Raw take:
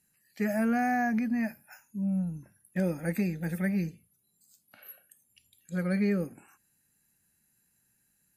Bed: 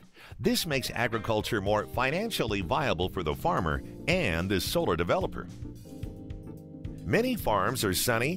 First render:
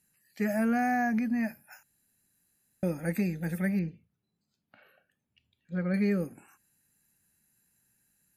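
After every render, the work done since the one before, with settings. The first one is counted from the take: 1.83–2.83 s: room tone; 3.79–5.94 s: distance through air 290 m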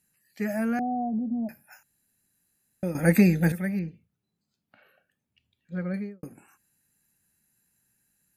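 0.79–1.49 s: steep low-pass 790 Hz 48 dB/octave; 2.95–3.52 s: gain +11 dB; 5.81–6.23 s: studio fade out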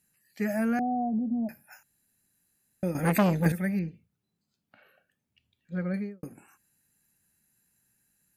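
2.91–3.46 s: transformer saturation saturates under 900 Hz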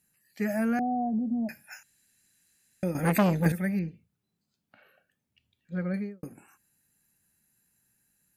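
1.06–2.84 s: high-order bell 3.8 kHz +9 dB 2.8 oct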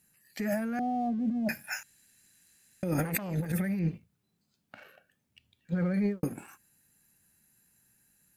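compressor with a negative ratio -34 dBFS, ratio -1; waveshaping leveller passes 1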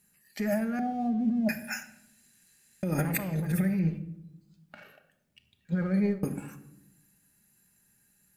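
simulated room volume 2700 m³, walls furnished, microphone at 1.3 m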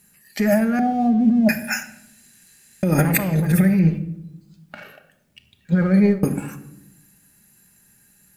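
trim +11 dB

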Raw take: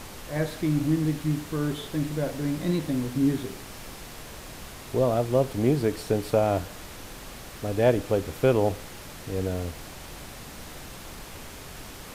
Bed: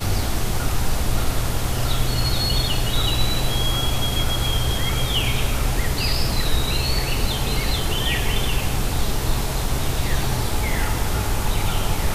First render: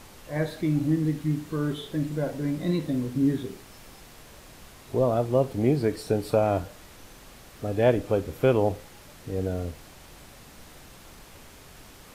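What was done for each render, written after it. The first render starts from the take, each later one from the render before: noise print and reduce 7 dB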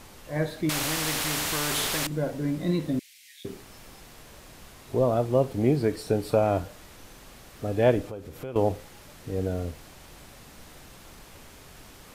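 0.69–2.07 s: spectrum-flattening compressor 4:1; 2.99–3.45 s: elliptic high-pass 2.1 kHz, stop band 60 dB; 8.08–8.56 s: compression 3:1, threshold -38 dBFS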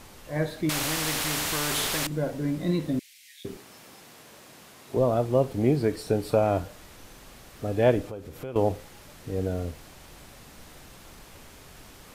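3.57–4.97 s: high-pass 160 Hz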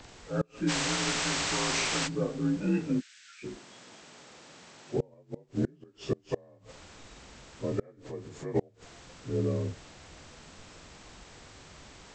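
frequency axis rescaled in octaves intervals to 85%; inverted gate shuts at -17 dBFS, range -32 dB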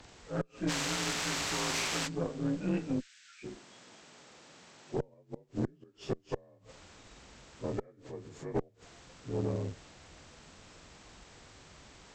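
valve stage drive 23 dB, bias 0.7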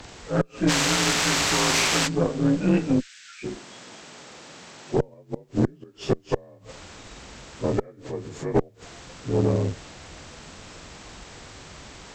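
trim +11.5 dB

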